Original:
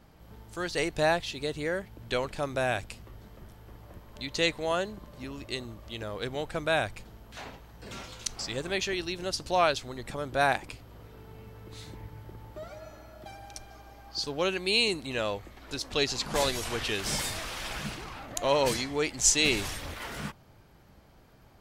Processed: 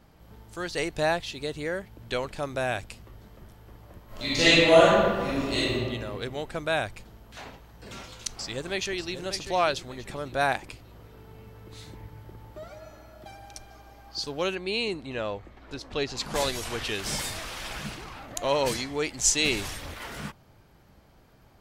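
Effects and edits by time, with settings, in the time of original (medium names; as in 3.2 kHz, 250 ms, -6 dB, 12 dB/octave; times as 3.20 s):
4.06–5.75 s: reverb throw, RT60 1.7 s, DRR -11.5 dB
8.07–9.23 s: echo throw 590 ms, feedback 30%, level -9.5 dB
14.55–16.17 s: low-pass 2.1 kHz 6 dB/octave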